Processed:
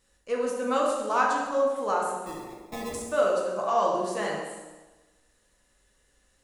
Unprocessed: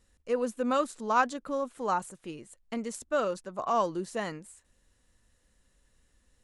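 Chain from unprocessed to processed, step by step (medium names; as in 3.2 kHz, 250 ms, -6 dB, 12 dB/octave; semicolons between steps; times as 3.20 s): bass shelf 300 Hz -9.5 dB; in parallel at -1 dB: peak limiter -23.5 dBFS, peak gain reduction 10 dB; 2.23–2.94 s: on the sum: sample-rate reducer 1.5 kHz, jitter 0%; feedback echo behind a band-pass 78 ms, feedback 56%, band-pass 490 Hz, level -4 dB; plate-style reverb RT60 1.1 s, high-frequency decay 0.95×, DRR -1.5 dB; trim -4 dB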